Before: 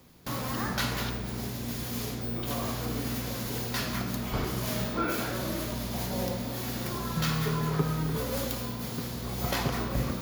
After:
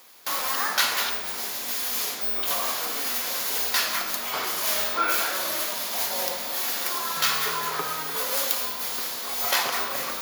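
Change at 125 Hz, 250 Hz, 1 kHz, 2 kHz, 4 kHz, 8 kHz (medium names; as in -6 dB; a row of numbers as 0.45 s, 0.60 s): -21.5 dB, -12.0 dB, +7.0 dB, +8.5 dB, +10.0 dB, +11.0 dB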